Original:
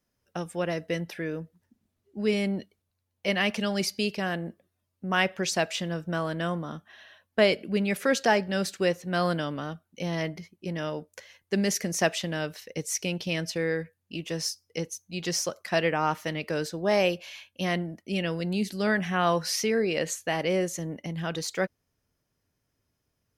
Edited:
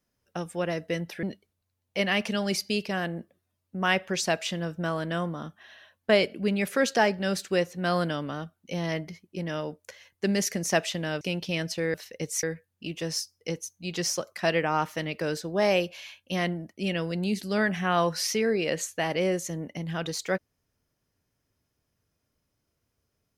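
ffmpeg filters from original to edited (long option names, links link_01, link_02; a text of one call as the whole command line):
ffmpeg -i in.wav -filter_complex "[0:a]asplit=5[link_01][link_02][link_03][link_04][link_05];[link_01]atrim=end=1.232[link_06];[link_02]atrim=start=2.518:end=12.502[link_07];[link_03]atrim=start=12.988:end=13.722[link_08];[link_04]atrim=start=12.498:end=12.992[link_09];[link_05]atrim=start=13.718[link_10];[link_06][link_07]acrossfade=duration=0.004:curve1=hsin:curve2=hsin[link_11];[link_11][link_08]acrossfade=duration=0.004:curve1=hsin:curve2=hsin[link_12];[link_12][link_09]acrossfade=duration=0.004:curve1=hsin:curve2=hsin[link_13];[link_13][link_10]acrossfade=duration=0.004:curve1=hsin:curve2=hsin" out.wav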